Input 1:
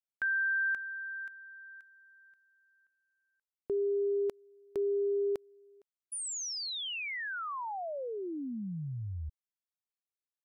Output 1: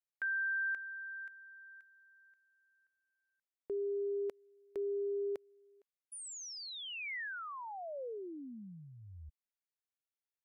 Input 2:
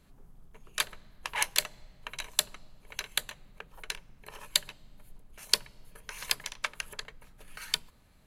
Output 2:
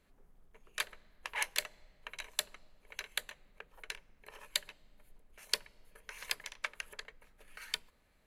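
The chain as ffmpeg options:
-af "equalizer=f=125:t=o:w=1:g=-7,equalizer=f=500:t=o:w=1:g=5,equalizer=f=2k:t=o:w=1:g=6,volume=-9dB"

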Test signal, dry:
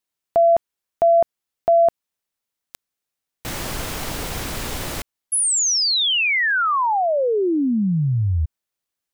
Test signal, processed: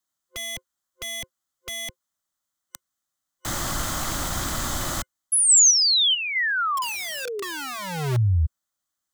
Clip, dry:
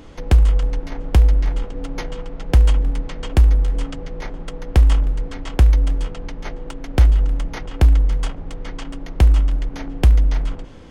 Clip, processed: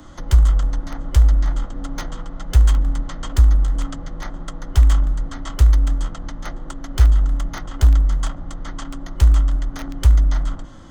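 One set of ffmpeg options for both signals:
-filter_complex "[0:a]superequalizer=7b=0.282:10b=1.78:12b=0.355:15b=1.78,acrossover=split=140|2700[a][b][c];[b]acompressor=threshold=-24dB:ratio=8:attack=0.83:release=37:knee=2.83:detection=peak[d];[a][d][c]amix=inputs=3:normalize=0,acrossover=split=150|1100[e][f][g];[f]aeval=exprs='(mod(22.4*val(0)+1,2)-1)/22.4':c=same[h];[e][h][g]amix=inputs=3:normalize=0"

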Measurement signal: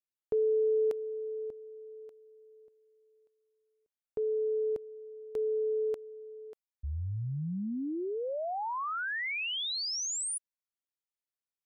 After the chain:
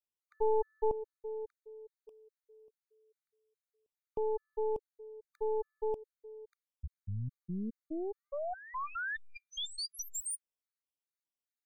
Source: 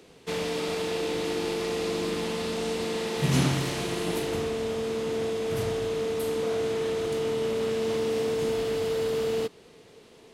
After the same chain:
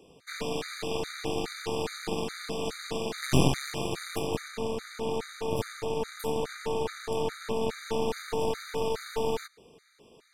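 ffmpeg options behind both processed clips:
-af "aeval=exprs='0.282*(cos(1*acos(clip(val(0)/0.282,-1,1)))-cos(1*PI/2))+0.141*(cos(4*acos(clip(val(0)/0.282,-1,1)))-cos(4*PI/2))+0.00158*(cos(5*acos(clip(val(0)/0.282,-1,1)))-cos(5*PI/2))':c=same,afftfilt=real='re*gt(sin(2*PI*2.4*pts/sr)*(1-2*mod(floor(b*sr/1024/1200),2)),0)':imag='im*gt(sin(2*PI*2.4*pts/sr)*(1-2*mod(floor(b*sr/1024/1200),2)),0)':win_size=1024:overlap=0.75,volume=-2.5dB"

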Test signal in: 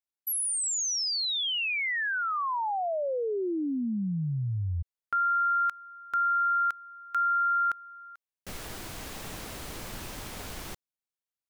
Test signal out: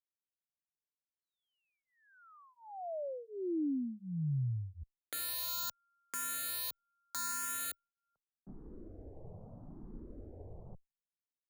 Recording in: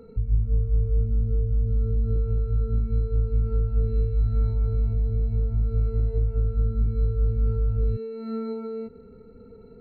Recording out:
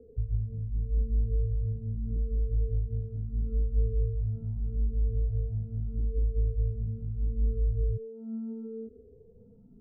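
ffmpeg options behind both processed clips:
-filter_complex "[0:a]acrossover=split=150|620[a][b][c];[c]acrusher=bits=3:mix=0:aa=0.000001[d];[a][b][d]amix=inputs=3:normalize=0,asplit=2[e][f];[f]afreqshift=0.78[g];[e][g]amix=inputs=2:normalize=1,volume=-3dB"

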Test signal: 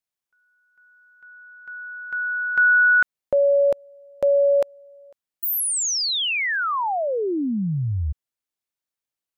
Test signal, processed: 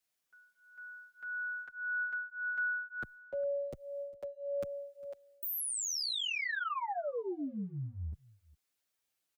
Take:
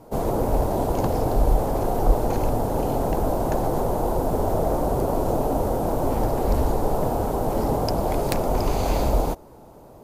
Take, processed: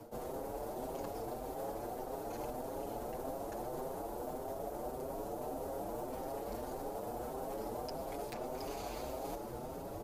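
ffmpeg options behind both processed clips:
-filter_complex "[0:a]acrossover=split=97|230|5700[a][b][c][d];[a]acompressor=threshold=-36dB:ratio=4[e];[b]acompressor=threshold=-41dB:ratio=4[f];[c]acompressor=threshold=-22dB:ratio=4[g];[d]acompressor=threshold=-38dB:ratio=4[h];[e][f][g][h]amix=inputs=4:normalize=0,equalizer=f=990:t=o:w=0.4:g=-4,areverse,acompressor=threshold=-40dB:ratio=10:attack=0.37:release=140:knee=1:detection=rms,areverse,lowshelf=f=320:g=-4,asplit=2[i][j];[j]aecho=0:1:404:0.075[k];[i][k]amix=inputs=2:normalize=0,asplit=2[l][m];[m]adelay=6.6,afreqshift=1.7[n];[l][n]amix=inputs=2:normalize=1,volume=8.5dB"

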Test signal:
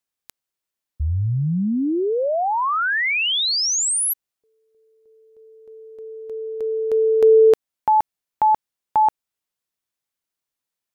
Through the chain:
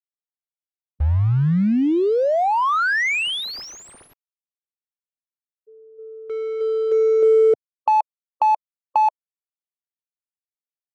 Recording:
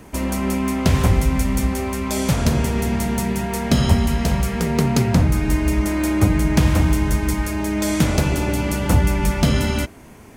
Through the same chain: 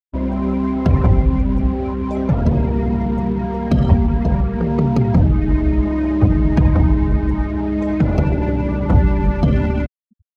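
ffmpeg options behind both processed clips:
-filter_complex "[0:a]acrossover=split=170[a][b];[b]acompressor=threshold=-18dB:ratio=2.5:attack=7:release=203:knee=2.83:detection=peak[c];[a][c]amix=inputs=2:normalize=0,afftfilt=real='re*gte(hypot(re,im),0.0794)':imag='im*gte(hypot(re,im),0.0794)':win_size=1024:overlap=0.75,asplit=2[d][e];[e]acrusher=bits=4:mix=0:aa=0.000001,volume=-4dB[f];[d][f]amix=inputs=2:normalize=0,adynamicsmooth=sensitivity=0.5:basefreq=1.3k,volume=-1dB"

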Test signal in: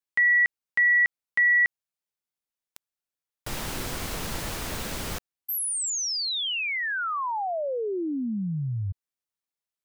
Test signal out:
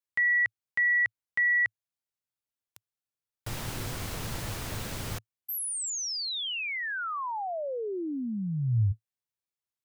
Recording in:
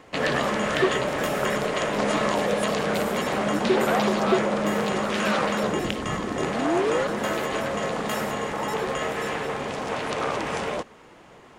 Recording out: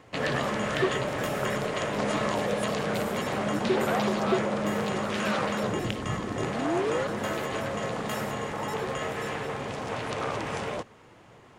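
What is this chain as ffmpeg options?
-af "equalizer=f=110:t=o:w=0.6:g=10.5,volume=-4.5dB"

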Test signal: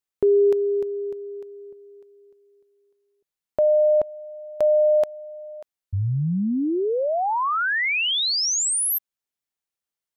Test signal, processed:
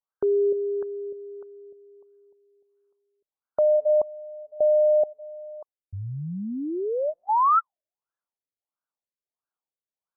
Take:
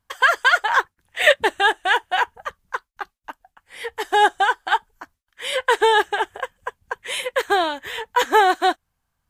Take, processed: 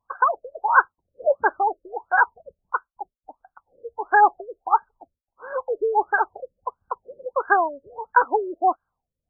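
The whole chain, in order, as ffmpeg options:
-af "tiltshelf=f=700:g=-10,afftfilt=real='re*lt(b*sr/1024,590*pow(1700/590,0.5+0.5*sin(2*PI*1.5*pts/sr)))':imag='im*lt(b*sr/1024,590*pow(1700/590,0.5+0.5*sin(2*PI*1.5*pts/sr)))':win_size=1024:overlap=0.75"

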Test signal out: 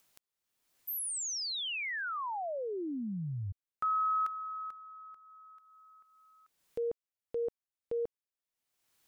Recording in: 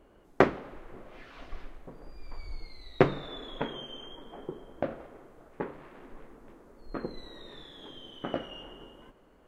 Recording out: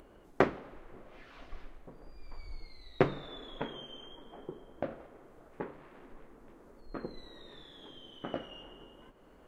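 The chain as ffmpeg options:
-af "acompressor=mode=upward:threshold=-45dB:ratio=2.5,volume=-4.5dB"

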